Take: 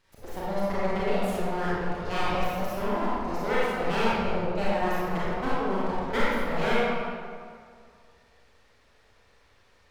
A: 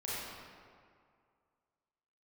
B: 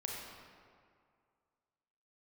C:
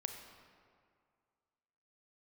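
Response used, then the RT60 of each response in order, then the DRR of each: A; 2.2 s, 2.2 s, 2.2 s; -9.0 dB, -2.0 dB, 5.0 dB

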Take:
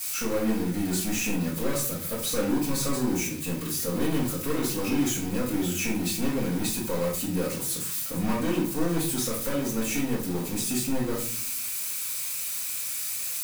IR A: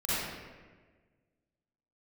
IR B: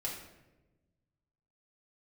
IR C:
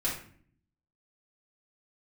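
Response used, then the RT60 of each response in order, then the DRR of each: C; 1.4 s, 1.1 s, 0.50 s; -12.0 dB, -3.5 dB, -7.5 dB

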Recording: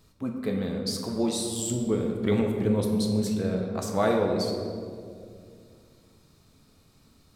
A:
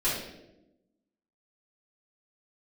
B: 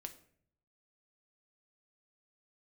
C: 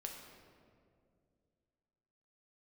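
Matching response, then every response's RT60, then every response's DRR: C; 0.95 s, 0.60 s, 2.3 s; -11.5 dB, 6.0 dB, 1.0 dB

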